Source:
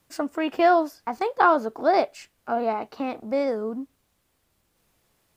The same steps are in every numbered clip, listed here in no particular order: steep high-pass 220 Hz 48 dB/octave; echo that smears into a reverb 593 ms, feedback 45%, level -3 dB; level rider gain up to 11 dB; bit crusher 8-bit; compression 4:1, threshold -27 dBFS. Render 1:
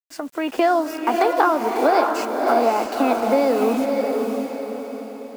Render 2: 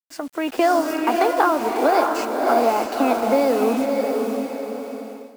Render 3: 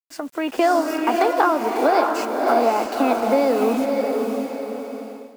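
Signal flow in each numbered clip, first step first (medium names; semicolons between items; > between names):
steep high-pass > bit crusher > compression > level rider > echo that smears into a reverb; steep high-pass > compression > bit crusher > echo that smears into a reverb > level rider; steep high-pass > bit crusher > compression > echo that smears into a reverb > level rider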